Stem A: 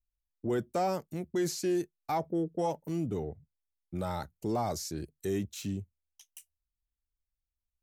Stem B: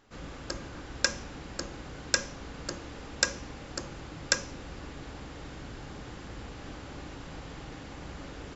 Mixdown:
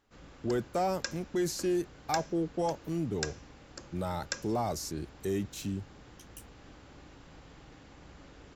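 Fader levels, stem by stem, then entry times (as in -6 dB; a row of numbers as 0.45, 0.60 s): 0.0, -10.0 dB; 0.00, 0.00 s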